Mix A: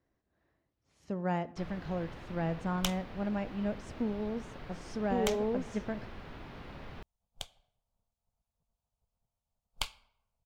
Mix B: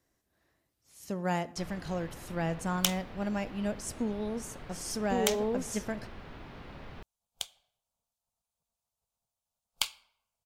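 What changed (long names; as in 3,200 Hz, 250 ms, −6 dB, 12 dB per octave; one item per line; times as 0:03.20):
speech: remove head-to-tape spacing loss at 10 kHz 26 dB
second sound: add spectral tilt +3 dB per octave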